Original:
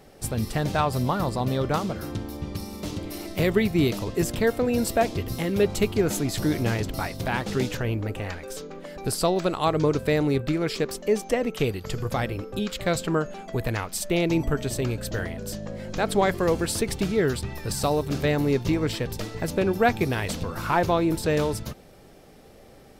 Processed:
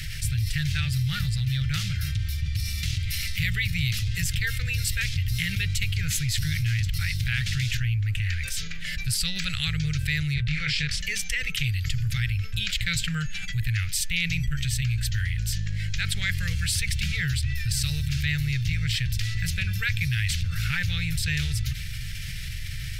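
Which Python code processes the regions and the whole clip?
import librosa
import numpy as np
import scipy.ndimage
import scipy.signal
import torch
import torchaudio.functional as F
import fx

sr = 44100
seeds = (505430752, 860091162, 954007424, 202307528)

y = fx.chain(x, sr, fx.lowpass(hz=5700.0, slope=12),
    fx.doubler(ms=27.0, db=-2), at=(10.34, 11.01))
y = scipy.signal.sosfilt(scipy.signal.cheby2(4, 40, [220.0, 1100.0], 'bandstop', fs=sr, output='sos'), y)
y = fx.high_shelf(y, sr, hz=5000.0, db=-9.0)
y = fx.env_flatten(y, sr, amount_pct=70)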